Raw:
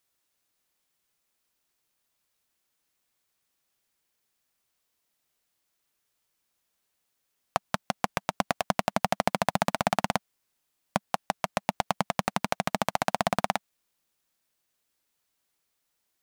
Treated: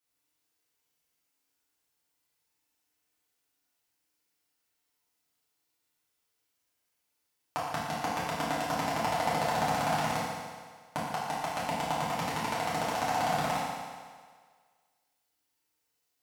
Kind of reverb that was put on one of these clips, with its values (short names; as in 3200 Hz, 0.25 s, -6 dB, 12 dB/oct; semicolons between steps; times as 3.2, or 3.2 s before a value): FDN reverb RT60 1.7 s, low-frequency decay 0.8×, high-frequency decay 0.95×, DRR -9.5 dB; gain -11.5 dB